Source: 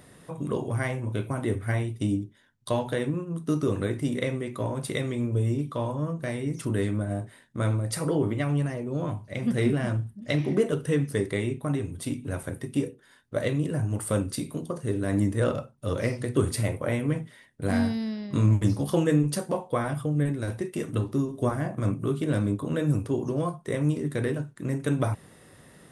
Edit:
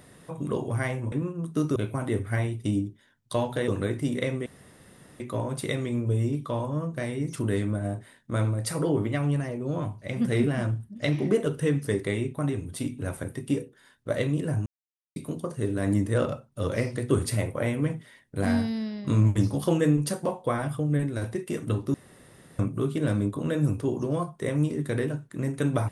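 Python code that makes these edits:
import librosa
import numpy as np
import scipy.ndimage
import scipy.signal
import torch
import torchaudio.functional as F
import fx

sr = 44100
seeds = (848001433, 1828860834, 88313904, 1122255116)

y = fx.edit(x, sr, fx.move(start_s=3.04, length_s=0.64, to_s=1.12),
    fx.insert_room_tone(at_s=4.46, length_s=0.74),
    fx.silence(start_s=13.92, length_s=0.5),
    fx.room_tone_fill(start_s=21.2, length_s=0.65), tone=tone)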